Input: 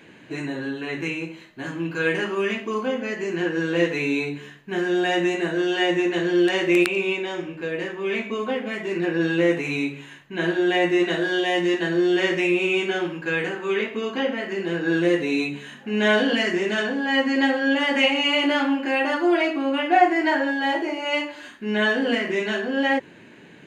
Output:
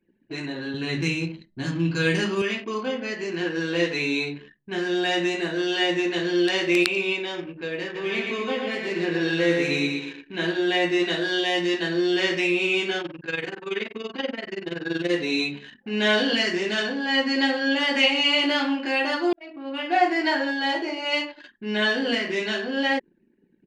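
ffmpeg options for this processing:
-filter_complex "[0:a]asettb=1/sr,asplit=3[s0][s1][s2];[s0]atrim=end=0.744[s3];[s1]atrim=start=0.74:end=2.42,asetpts=PTS-STARTPTS,afade=t=in:d=0.004:c=qsin,afade=t=out:st=1.676:d=0.004:c=qsin,bass=f=250:g=14,treble=f=4000:g=7[s4];[s2]atrim=start=2.416[s5];[s3][s4]acrossfade=d=0.004:c1=hsin:c2=qsin[s6];[s6][s5]acrossfade=d=0.004:c1=qsin:c2=hsin,asplit=3[s7][s8][s9];[s7]afade=t=out:st=7.94:d=0.02[s10];[s8]aecho=1:1:117|234|351|468|585|702:0.631|0.309|0.151|0.0742|0.0364|0.0178,afade=t=in:st=7.94:d=0.02,afade=t=out:st=10.45:d=0.02[s11];[s9]afade=t=in:st=10.45:d=0.02[s12];[s10][s11][s12]amix=inputs=3:normalize=0,asettb=1/sr,asplit=3[s13][s14][s15];[s13]atrim=end=13.014[s16];[s14]atrim=start=13.01:end=15.11,asetpts=PTS-STARTPTS,afade=t=in:d=0.004:c=qsin,afade=t=out:st=2.096:d=0.004:c=qsin,tremolo=f=21:d=0.75[s17];[s15]atrim=start=15.106[s18];[s16][s17]acrossfade=d=0.004:c1=hsin:c2=qsin[s19];[s19][s18]acrossfade=d=0.004:c1=qsin:c2=hsin,asplit=2[s20][s21];[s20]atrim=end=19.33,asetpts=PTS-STARTPTS,afade=t=out:st=19.326:d=0.004:c=hsin[s22];[s21]atrim=start=19.33,asetpts=PTS-STARTPTS,afade=t=in:d=0.76[s23];[s22][s23]concat=n=2:v=0:a=1,bandreject=f=6600:w=18,anlmdn=1.58,equalizer=f=4600:w=1.3:g=12.5,volume=0.708"

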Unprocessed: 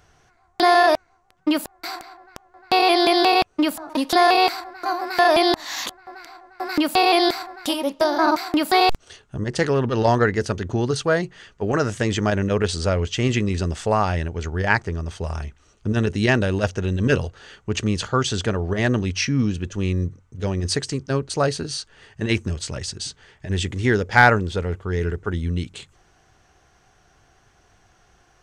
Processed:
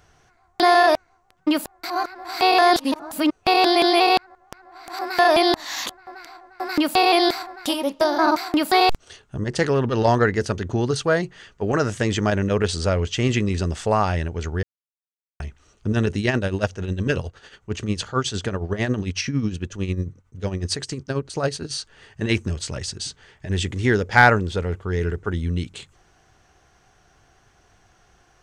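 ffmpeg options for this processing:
-filter_complex "[0:a]asplit=3[s0][s1][s2];[s0]afade=t=out:st=16.17:d=0.02[s3];[s1]tremolo=f=11:d=0.65,afade=t=in:st=16.17:d=0.02,afade=t=out:st=21.7:d=0.02[s4];[s2]afade=t=in:st=21.7:d=0.02[s5];[s3][s4][s5]amix=inputs=3:normalize=0,asplit=5[s6][s7][s8][s9][s10];[s6]atrim=end=1.902[s11];[s7]atrim=start=1.898:end=4.992,asetpts=PTS-STARTPTS,areverse[s12];[s8]atrim=start=4.988:end=14.63,asetpts=PTS-STARTPTS,afade=t=out:st=9.638:d=0.004:c=hsin[s13];[s9]atrim=start=14.63:end=15.4,asetpts=PTS-STARTPTS,volume=0[s14];[s10]atrim=start=15.4,asetpts=PTS-STARTPTS,afade=t=in:d=0.004:c=hsin[s15];[s11][s12]acrossfade=d=0.004:c1=hsin:c2=hsin[s16];[s13][s14][s15]concat=n=3:v=0:a=1[s17];[s16][s17]acrossfade=d=0.004:c1=hsin:c2=hsin"

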